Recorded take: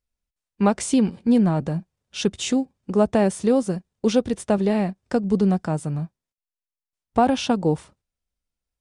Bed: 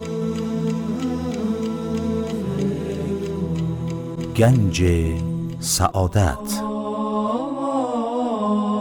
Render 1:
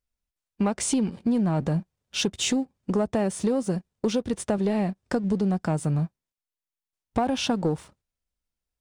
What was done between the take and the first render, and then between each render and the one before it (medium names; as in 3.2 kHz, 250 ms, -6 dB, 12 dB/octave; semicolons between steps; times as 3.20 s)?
compression 6:1, threshold -24 dBFS, peak gain reduction 11 dB; waveshaping leveller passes 1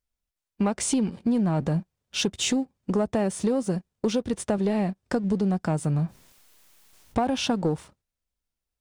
5.96–7.18 s: level flattener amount 50%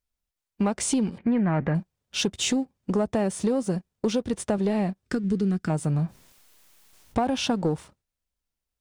1.18–1.75 s: resonant low-pass 2 kHz, resonance Q 3.8; 5.06–5.70 s: high-order bell 740 Hz -12.5 dB 1.2 oct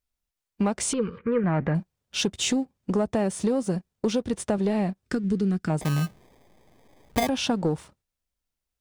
0.93–1.44 s: FFT filter 120 Hz 0 dB, 320 Hz -8 dB, 480 Hz +11 dB, 700 Hz -22 dB, 1.2 kHz +14 dB, 1.8 kHz +1 dB, 2.9 kHz -1 dB, 4.5 kHz -9 dB, 8.6 kHz -27 dB; 5.81–7.29 s: sample-rate reducer 1.4 kHz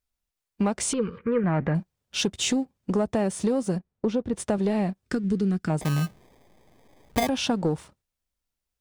3.78–4.35 s: low-pass 1.3 kHz 6 dB/octave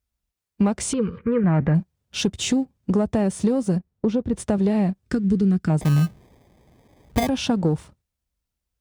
high-pass 42 Hz; bass shelf 200 Hz +11 dB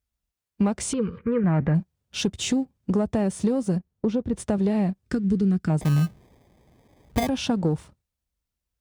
trim -2.5 dB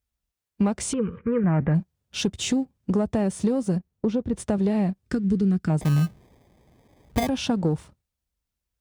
0.94–1.71 s: Savitzky-Golay filter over 25 samples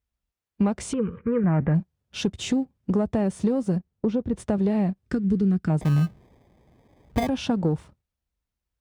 treble shelf 4.2 kHz -8 dB